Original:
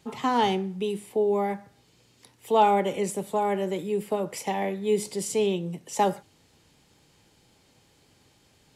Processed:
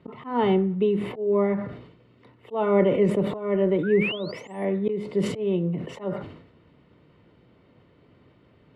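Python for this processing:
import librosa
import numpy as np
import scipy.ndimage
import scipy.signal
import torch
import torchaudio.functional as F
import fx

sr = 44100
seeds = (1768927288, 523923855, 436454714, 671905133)

y = fx.high_shelf(x, sr, hz=4200.0, db=-7.5)
y = fx.auto_swell(y, sr, attack_ms=272.0)
y = fx.notch_comb(y, sr, f0_hz=820.0)
y = fx.spec_paint(y, sr, seeds[0], shape='rise', start_s=3.83, length_s=0.82, low_hz=1400.0, high_hz=11000.0, level_db=-41.0)
y = fx.air_absorb(y, sr, metres=490.0)
y = fx.sustainer(y, sr, db_per_s=74.0)
y = y * librosa.db_to_amplitude(8.0)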